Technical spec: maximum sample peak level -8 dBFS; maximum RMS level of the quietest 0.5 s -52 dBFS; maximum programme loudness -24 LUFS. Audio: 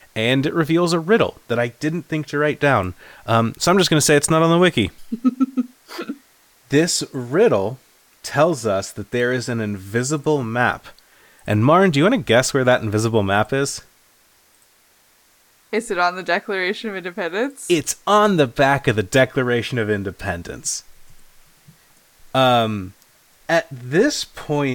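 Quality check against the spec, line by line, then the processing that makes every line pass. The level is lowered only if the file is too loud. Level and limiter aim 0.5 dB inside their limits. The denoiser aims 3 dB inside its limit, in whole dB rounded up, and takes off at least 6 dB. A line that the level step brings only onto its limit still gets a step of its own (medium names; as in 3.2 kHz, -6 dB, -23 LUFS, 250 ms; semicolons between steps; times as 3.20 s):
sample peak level -4.0 dBFS: fail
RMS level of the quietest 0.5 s -56 dBFS: pass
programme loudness -19.0 LUFS: fail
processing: trim -5.5 dB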